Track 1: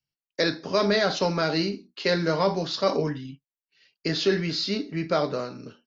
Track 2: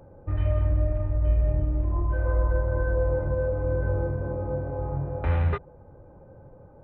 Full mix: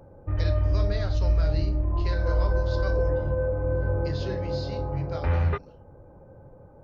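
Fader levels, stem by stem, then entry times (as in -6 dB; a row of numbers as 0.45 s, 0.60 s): -14.5 dB, 0.0 dB; 0.00 s, 0.00 s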